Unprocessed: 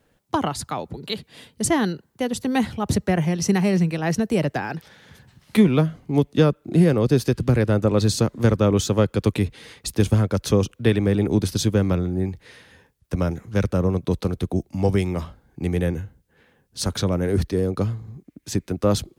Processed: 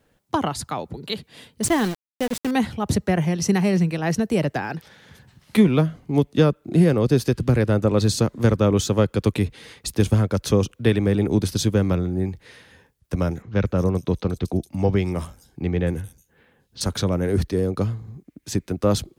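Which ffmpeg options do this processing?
ffmpeg -i in.wav -filter_complex "[0:a]asettb=1/sr,asplit=3[link_01][link_02][link_03];[link_01]atrim=end=1.634[link_04];[link_02]atrim=start=1.63:end=2.51,asetpts=PTS-STARTPTS,afade=type=in:duration=0.004:curve=qsin,afade=type=out:start_time=0.876:duration=0.004:curve=qsin,aeval=exprs='val(0)*gte(abs(val(0)),0.0447)':channel_layout=same[link_05];[link_03]atrim=start=2.506[link_06];[link_04][link_05]acrossfade=duration=0.004:curve1=hsin:curve2=qsin[link_07];[link_07][link_06]acrossfade=duration=0.004:curve1=qsin:curve2=hsin,asettb=1/sr,asplit=3[link_08][link_09][link_10];[link_08]atrim=end=13.424[link_11];[link_09]atrim=start=13.42:end=16.81,asetpts=PTS-STARTPTS,afade=type=in:duration=0.004:curve=qsin,afade=type=out:start_time=3.386:duration=0.004:curve=qsin,acrossover=split=5000[link_12][link_13];[link_13]adelay=230[link_14];[link_12][link_14]amix=inputs=2:normalize=0,atrim=end_sample=149499[link_15];[link_10]atrim=start=16.806[link_16];[link_11][link_15]acrossfade=duration=0.004:curve1=hsin:curve2=qsin[link_17];[link_17][link_16]acrossfade=duration=0.004:curve1=qsin:curve2=hsin" out.wav

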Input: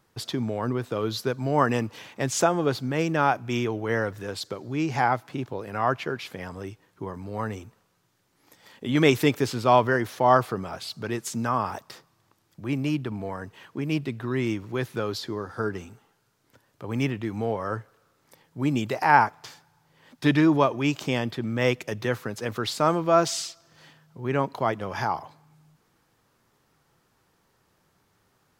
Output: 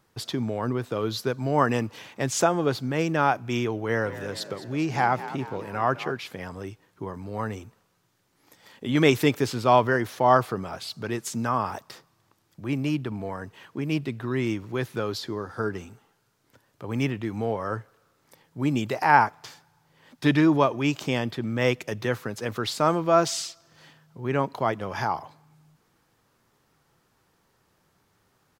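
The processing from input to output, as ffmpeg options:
ffmpeg -i in.wav -filter_complex "[0:a]asplit=3[link_01][link_02][link_03];[link_01]afade=type=out:start_time=4.04:duration=0.02[link_04];[link_02]asplit=7[link_05][link_06][link_07][link_08][link_09][link_10][link_11];[link_06]adelay=208,afreqshift=42,volume=-14dB[link_12];[link_07]adelay=416,afreqshift=84,volume=-19.2dB[link_13];[link_08]adelay=624,afreqshift=126,volume=-24.4dB[link_14];[link_09]adelay=832,afreqshift=168,volume=-29.6dB[link_15];[link_10]adelay=1040,afreqshift=210,volume=-34.8dB[link_16];[link_11]adelay=1248,afreqshift=252,volume=-40dB[link_17];[link_05][link_12][link_13][link_14][link_15][link_16][link_17]amix=inputs=7:normalize=0,afade=type=in:start_time=4.04:duration=0.02,afade=type=out:start_time=6.11:duration=0.02[link_18];[link_03]afade=type=in:start_time=6.11:duration=0.02[link_19];[link_04][link_18][link_19]amix=inputs=3:normalize=0" out.wav

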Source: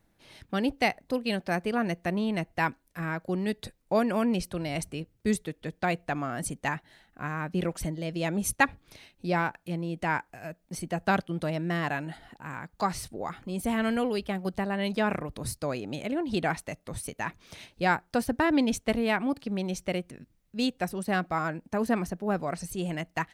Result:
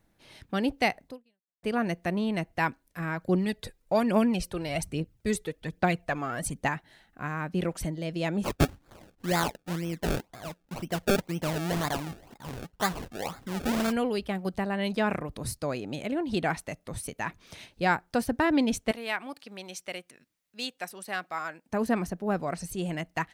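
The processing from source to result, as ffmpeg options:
ffmpeg -i in.wav -filter_complex "[0:a]asplit=3[link_01][link_02][link_03];[link_01]afade=type=out:start_time=3.16:duration=0.02[link_04];[link_02]aphaser=in_gain=1:out_gain=1:delay=2.6:decay=0.49:speed=1.2:type=triangular,afade=type=in:start_time=3.16:duration=0.02,afade=type=out:start_time=6.66:duration=0.02[link_05];[link_03]afade=type=in:start_time=6.66:duration=0.02[link_06];[link_04][link_05][link_06]amix=inputs=3:normalize=0,asplit=3[link_07][link_08][link_09];[link_07]afade=type=out:start_time=8.43:duration=0.02[link_10];[link_08]acrusher=samples=30:mix=1:aa=0.000001:lfo=1:lforange=30:lforate=2,afade=type=in:start_time=8.43:duration=0.02,afade=type=out:start_time=13.91:duration=0.02[link_11];[link_09]afade=type=in:start_time=13.91:duration=0.02[link_12];[link_10][link_11][link_12]amix=inputs=3:normalize=0,asettb=1/sr,asplit=3[link_13][link_14][link_15];[link_13]atrim=end=18.914[link_16];[link_14]atrim=start=18.91:end=21.69,asetpts=PTS-STARTPTS,afade=type=in:duration=0.004:curve=qsin,afade=type=out:start_time=2.776:duration=0.004:curve=qsin,highpass=frequency=1300:poles=1[link_17];[link_15]atrim=start=21.686[link_18];[link_16][link_17]acrossfade=duration=0.004:curve1=hsin:curve2=qsin[link_19];[link_19][link_18]acrossfade=duration=0.004:curve1=qsin:curve2=hsin,asplit=2[link_20][link_21];[link_20]atrim=end=1.63,asetpts=PTS-STARTPTS,afade=type=out:start_time=1.06:duration=0.57:curve=exp[link_22];[link_21]atrim=start=1.63,asetpts=PTS-STARTPTS,afade=type=in:duration=0.004:curve=hsin[link_23];[link_22][link_23]concat=n=2:v=0:a=1" out.wav

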